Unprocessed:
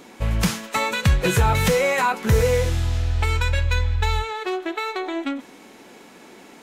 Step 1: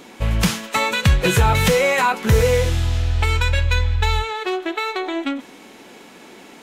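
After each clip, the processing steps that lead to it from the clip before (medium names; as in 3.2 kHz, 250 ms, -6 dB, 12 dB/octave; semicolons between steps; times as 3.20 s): peaking EQ 3.1 kHz +3 dB 0.77 oct; trim +2.5 dB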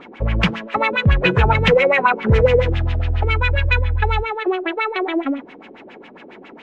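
LFO low-pass sine 7.3 Hz 360–2900 Hz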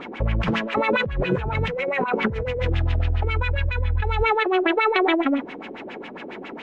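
compressor with a negative ratio -22 dBFS, ratio -1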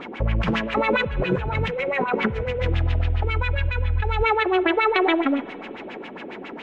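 spring tank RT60 3.2 s, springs 37/59 ms, chirp 55 ms, DRR 18.5 dB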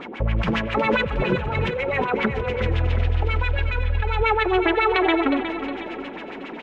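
feedback delay 362 ms, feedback 50%, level -9.5 dB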